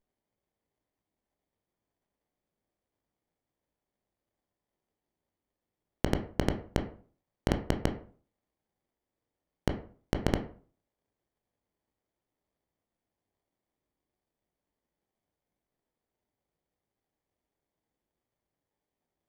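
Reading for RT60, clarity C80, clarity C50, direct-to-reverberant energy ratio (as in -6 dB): 0.45 s, 15.5 dB, 11.0 dB, 5.0 dB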